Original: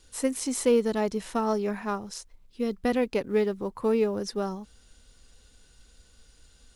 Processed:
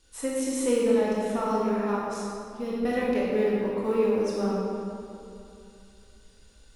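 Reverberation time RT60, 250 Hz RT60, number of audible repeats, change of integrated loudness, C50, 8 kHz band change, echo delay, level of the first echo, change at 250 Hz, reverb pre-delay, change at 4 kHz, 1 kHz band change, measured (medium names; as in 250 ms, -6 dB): 2.7 s, 3.0 s, no echo, +1.0 dB, -2.5 dB, -1.5 dB, no echo, no echo, +1.5 dB, 19 ms, -2.0 dB, +2.0 dB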